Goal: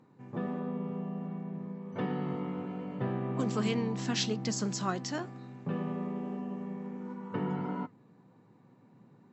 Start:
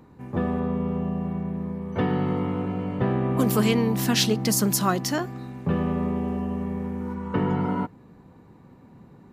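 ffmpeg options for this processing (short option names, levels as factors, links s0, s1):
-af "flanger=delay=3.8:depth=7.3:regen=86:speed=1.4:shape=sinusoidal,afftfilt=real='re*between(b*sr/4096,100,7900)':imag='im*between(b*sr/4096,100,7900)':win_size=4096:overlap=0.75,volume=0.562"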